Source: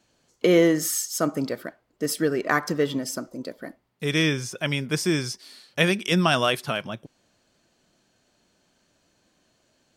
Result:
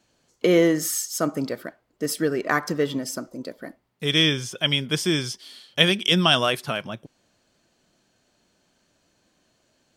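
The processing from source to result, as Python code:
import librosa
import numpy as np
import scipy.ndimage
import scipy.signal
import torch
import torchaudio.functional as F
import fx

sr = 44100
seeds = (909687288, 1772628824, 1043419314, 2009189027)

y = fx.peak_eq(x, sr, hz=3200.0, db=13.5, octaves=0.22, at=(4.04, 6.39))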